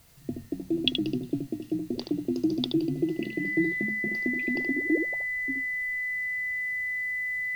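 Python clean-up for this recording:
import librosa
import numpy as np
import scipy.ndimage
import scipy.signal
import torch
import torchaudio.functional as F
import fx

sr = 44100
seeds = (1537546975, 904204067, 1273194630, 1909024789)

y = fx.notch(x, sr, hz=2000.0, q=30.0)
y = fx.fix_echo_inverse(y, sr, delay_ms=75, level_db=-6.5)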